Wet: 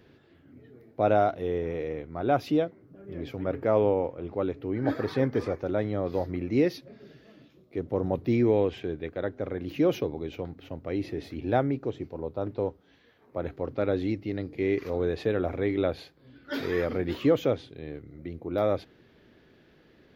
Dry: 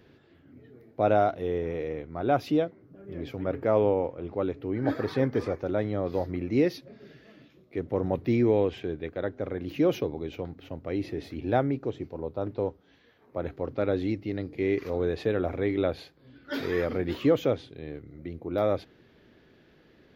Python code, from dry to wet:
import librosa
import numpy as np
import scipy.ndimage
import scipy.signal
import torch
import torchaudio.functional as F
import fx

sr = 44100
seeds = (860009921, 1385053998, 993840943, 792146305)

y = fx.peak_eq(x, sr, hz=2000.0, db=-4.5, octaves=1.0, at=(7.02, 8.32))